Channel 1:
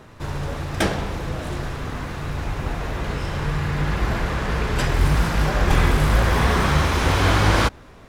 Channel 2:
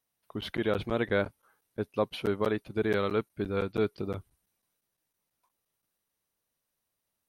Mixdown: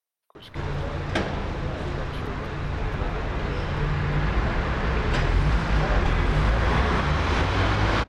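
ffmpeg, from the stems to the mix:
-filter_complex "[0:a]lowpass=4.5k,adelay=350,volume=-1.5dB[a];[1:a]highpass=400,alimiter=limit=-22.5dB:level=0:latency=1,volume=-6.5dB[b];[a][b]amix=inputs=2:normalize=0,alimiter=limit=-12dB:level=0:latency=1:release=259"

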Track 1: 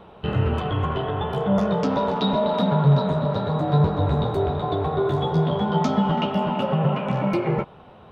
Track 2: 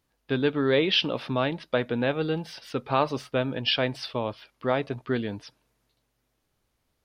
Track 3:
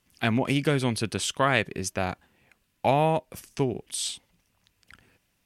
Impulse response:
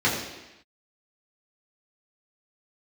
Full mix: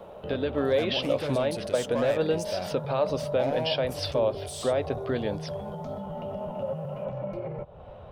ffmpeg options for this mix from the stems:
-filter_complex "[0:a]asubboost=boost=6:cutoff=100,acrossover=split=120|950[a][b][c];[a]acompressor=threshold=-35dB:ratio=4[d];[b]acompressor=threshold=-30dB:ratio=4[e];[c]acompressor=threshold=-48dB:ratio=4[f];[d][e][f]amix=inputs=3:normalize=0,alimiter=level_in=0.5dB:limit=-24dB:level=0:latency=1:release=13,volume=-0.5dB,volume=-4dB[g];[1:a]highshelf=f=4.5k:g=7.5,alimiter=limit=-20.5dB:level=0:latency=1:release=212,volume=0dB[h];[2:a]bandreject=f=65.18:t=h:w=4,bandreject=f=130.36:t=h:w=4,bandreject=f=195.54:t=h:w=4,bandreject=f=260.72:t=h:w=4,bandreject=f=325.9:t=h:w=4,bandreject=f=391.08:t=h:w=4,bandreject=f=456.26:t=h:w=4,bandreject=f=521.44:t=h:w=4,bandreject=f=586.62:t=h:w=4,bandreject=f=651.8:t=h:w=4,bandreject=f=716.98:t=h:w=4,bandreject=f=782.16:t=h:w=4,bandreject=f=847.34:t=h:w=4,bandreject=f=912.52:t=h:w=4,bandreject=f=977.7:t=h:w=4,bandreject=f=1.04288k:t=h:w=4,bandreject=f=1.10806k:t=h:w=4,bandreject=f=1.17324k:t=h:w=4,bandreject=f=1.23842k:t=h:w=4,bandreject=f=1.3036k:t=h:w=4,bandreject=f=1.36878k:t=h:w=4,bandreject=f=1.43396k:t=h:w=4,bandreject=f=1.49914k:t=h:w=4,bandreject=f=1.56432k:t=h:w=4,bandreject=f=1.6295k:t=h:w=4,bandreject=f=1.69468k:t=h:w=4,bandreject=f=1.75986k:t=h:w=4,adelay=550,volume=1.5dB[i];[g][i]amix=inputs=2:normalize=0,asoftclip=type=tanh:threshold=-22.5dB,alimiter=level_in=8dB:limit=-24dB:level=0:latency=1:release=165,volume=-8dB,volume=0dB[j];[h][j]amix=inputs=2:normalize=0,equalizer=f=570:t=o:w=0.53:g=14"

